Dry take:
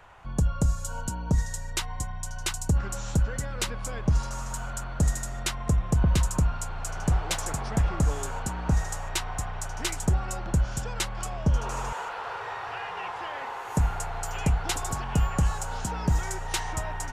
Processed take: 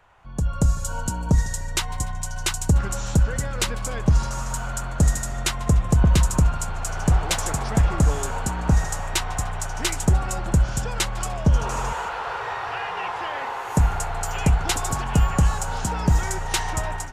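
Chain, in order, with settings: level rider gain up to 11.5 dB; modulated delay 148 ms, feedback 64%, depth 122 cents, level -21.5 dB; trim -5.5 dB

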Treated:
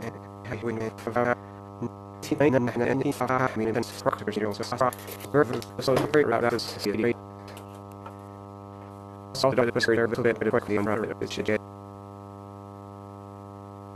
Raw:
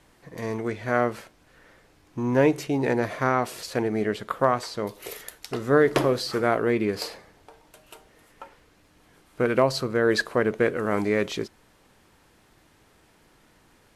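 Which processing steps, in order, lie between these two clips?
slices played last to first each 89 ms, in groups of 5; mains buzz 100 Hz, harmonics 13, -41 dBFS -3 dB/octave; trim -1 dB

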